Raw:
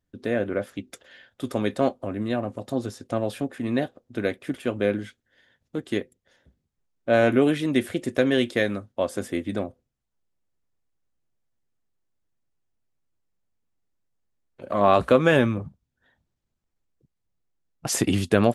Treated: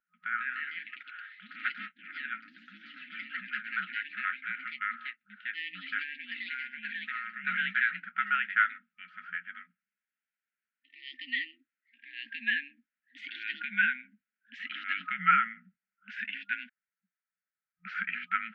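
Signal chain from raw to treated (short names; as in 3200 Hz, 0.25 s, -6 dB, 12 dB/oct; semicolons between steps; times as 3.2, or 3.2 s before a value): FFT band-reject 170–1600 Hz; mistuned SSB -340 Hz 280–2500 Hz; echoes that change speed 0.176 s, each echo +2 st, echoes 3; 5.99–7.44 compressor 5:1, threshold -40 dBFS, peak gain reduction 11.5 dB; gain +5 dB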